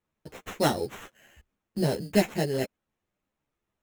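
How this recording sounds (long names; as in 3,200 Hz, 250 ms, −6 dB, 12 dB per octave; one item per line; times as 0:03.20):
aliases and images of a low sample rate 4,700 Hz, jitter 0%
a shimmering, thickened sound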